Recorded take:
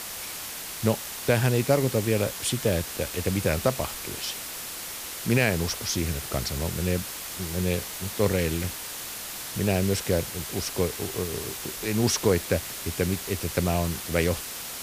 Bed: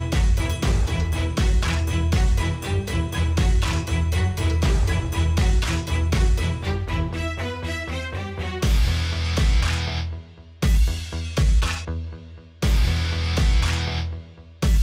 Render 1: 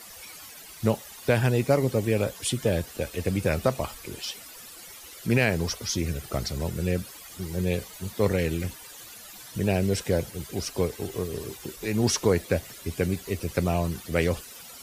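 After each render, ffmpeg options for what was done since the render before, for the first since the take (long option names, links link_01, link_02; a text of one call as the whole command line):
ffmpeg -i in.wav -af "afftdn=noise_reduction=14:noise_floor=-37" out.wav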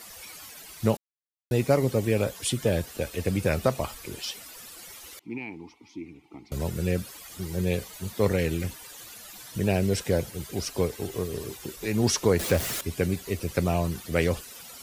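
ffmpeg -i in.wav -filter_complex "[0:a]asettb=1/sr,asplit=3[link_01][link_02][link_03];[link_01]atrim=end=5.194[link_04];[link_02]atrim=start=5.19:end=6.52,asetpts=PTS-STARTPTS,afade=type=in:duration=0.004:curve=qsin,afade=type=out:start_time=1.326:duration=0.004:curve=qsin,asplit=3[link_05][link_06][link_07];[link_05]bandpass=frequency=300:width_type=q:width=8,volume=0dB[link_08];[link_06]bandpass=frequency=870:width_type=q:width=8,volume=-6dB[link_09];[link_07]bandpass=frequency=2240:width_type=q:width=8,volume=-9dB[link_10];[link_08][link_09][link_10]amix=inputs=3:normalize=0[link_11];[link_03]atrim=start=6.516[link_12];[link_04][link_11]acrossfade=duration=0.004:curve1=hsin:curve2=qsin[link_13];[link_13][link_12]acrossfade=duration=0.004:curve1=qsin:curve2=hsin,asettb=1/sr,asplit=3[link_14][link_15][link_16];[link_14]atrim=end=12.394[link_17];[link_15]atrim=start=12.39:end=12.81,asetpts=PTS-STARTPTS,afade=type=in:duration=0.004:curve=qsin,afade=type=out:start_time=0.416:duration=0.004:curve=qsin,aeval=exprs='val(0)+0.5*0.0447*sgn(val(0))':channel_layout=same[link_18];[link_16]atrim=start=12.806[link_19];[link_17][link_18]acrossfade=duration=0.004:curve1=hsin:curve2=qsin[link_20];[link_20][link_19]acrossfade=duration=0.004:curve1=qsin:curve2=hsin,asplit=3[link_21][link_22][link_23];[link_21]atrim=end=0.97,asetpts=PTS-STARTPTS,afade=type=out:start_time=0.966:duration=0.004:curve=hsin[link_24];[link_22]atrim=start=0.97:end=1.51,asetpts=PTS-STARTPTS,volume=0[link_25];[link_23]atrim=start=1.51,asetpts=PTS-STARTPTS,afade=type=in:duration=0.004:curve=hsin[link_26];[link_24][link_25][link_26]concat=n=3:v=0:a=1" out.wav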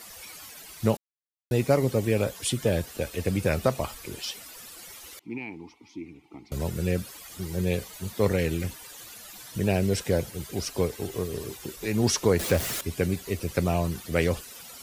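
ffmpeg -i in.wav -af anull out.wav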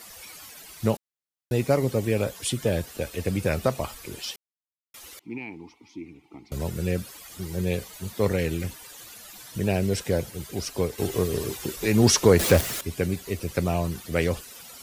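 ffmpeg -i in.wav -filter_complex "[0:a]asettb=1/sr,asplit=3[link_01][link_02][link_03];[link_01]atrim=end=10.984[link_04];[link_02]atrim=start=10.98:end=12.61,asetpts=PTS-STARTPTS,afade=type=in:duration=0.004:curve=qsin,afade=type=out:start_time=1.626:duration=0.004:curve=qsin,acontrast=48[link_05];[link_03]atrim=start=12.606[link_06];[link_04][link_05]acrossfade=duration=0.004:curve1=hsin:curve2=qsin[link_07];[link_07][link_06]acrossfade=duration=0.004:curve1=qsin:curve2=hsin,asplit=3[link_08][link_09][link_10];[link_08]atrim=end=4.36,asetpts=PTS-STARTPTS,afade=type=out:start_time=4.356:duration=0.004:curve=hsin[link_11];[link_09]atrim=start=4.36:end=4.94,asetpts=PTS-STARTPTS,volume=0[link_12];[link_10]atrim=start=4.94,asetpts=PTS-STARTPTS,afade=type=in:duration=0.004:curve=hsin[link_13];[link_11][link_12][link_13]concat=n=3:v=0:a=1" out.wav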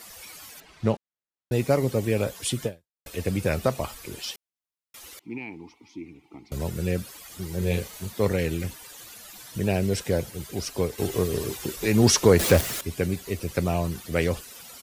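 ffmpeg -i in.wav -filter_complex "[0:a]asettb=1/sr,asplit=3[link_01][link_02][link_03];[link_01]atrim=end=0.604[link_04];[link_02]atrim=start=0.6:end=1.52,asetpts=PTS-STARTPTS,afade=type=in:duration=0.004:curve=qsin,afade=type=out:start_time=0.916:duration=0.004:curve=qsin,adynamicsmooth=sensitivity=4:basefreq=3300[link_05];[link_03]atrim=start=1.516[link_06];[link_04][link_05]acrossfade=duration=0.004:curve1=hsin:curve2=qsin[link_07];[link_07][link_06]acrossfade=duration=0.004:curve1=qsin:curve2=hsin,asplit=3[link_08][link_09][link_10];[link_08]afade=type=out:start_time=7.61:duration=0.02[link_11];[link_09]asplit=2[link_12][link_13];[link_13]adelay=35,volume=-4dB[link_14];[link_12][link_14]amix=inputs=2:normalize=0,afade=type=in:start_time=7.61:duration=0.02,afade=type=out:start_time=8.05:duration=0.02[link_15];[link_10]afade=type=in:start_time=8.05:duration=0.02[link_16];[link_11][link_15][link_16]amix=inputs=3:normalize=0,asplit=2[link_17][link_18];[link_17]atrim=end=3.06,asetpts=PTS-STARTPTS,afade=type=out:start_time=2.65:duration=0.41:curve=exp[link_19];[link_18]atrim=start=3.06,asetpts=PTS-STARTPTS,afade=type=in:duration=0.004:curve=hsin[link_20];[link_19][link_20]concat=n=2:v=0:a=1" out.wav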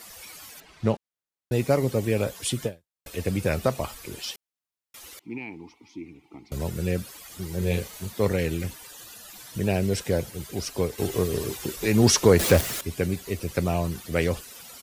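ffmpeg -i in.wav -filter_complex "[0:a]asettb=1/sr,asplit=3[link_01][link_02][link_03];[link_01]atrim=end=8.904[link_04];[link_02]atrim=start=8.9:end=9.3,asetpts=PTS-STARTPTS,afade=type=in:duration=0.004:curve=qsin,afade=type=out:start_time=0.396:duration=0.004:curve=qsin,asuperstop=centerf=2200:order=20:qfactor=7.5[link_05];[link_03]atrim=start=9.296[link_06];[link_04][link_05]acrossfade=duration=0.004:curve1=hsin:curve2=qsin[link_07];[link_07][link_06]acrossfade=duration=0.004:curve1=qsin:curve2=hsin" out.wav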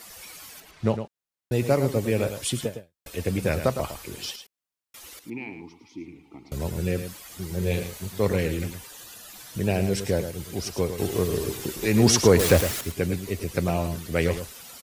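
ffmpeg -i in.wav -af "aecho=1:1:108:0.335" out.wav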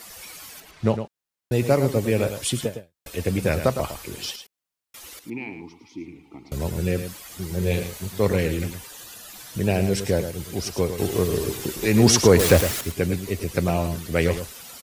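ffmpeg -i in.wav -af "volume=2.5dB,alimiter=limit=-3dB:level=0:latency=1" out.wav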